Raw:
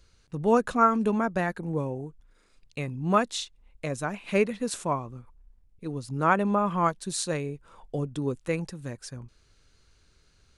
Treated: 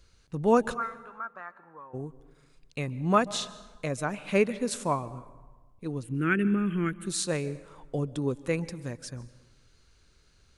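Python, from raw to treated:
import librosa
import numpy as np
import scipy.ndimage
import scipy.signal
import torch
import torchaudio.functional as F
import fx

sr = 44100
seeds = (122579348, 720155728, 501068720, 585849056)

y = fx.auto_wah(x, sr, base_hz=760.0, top_hz=2000.0, q=6.2, full_db=-16.5, direction='up', at=(0.73, 1.93), fade=0.02)
y = fx.curve_eq(y, sr, hz=(150.0, 360.0, 600.0, 1000.0, 1500.0, 3000.0, 4700.0, 9000.0), db=(0, 5, -23, -25, 1, 4, -29, -2), at=(6.02, 7.05), fade=0.02)
y = fx.rev_plate(y, sr, seeds[0], rt60_s=1.3, hf_ratio=0.6, predelay_ms=120, drr_db=17.5)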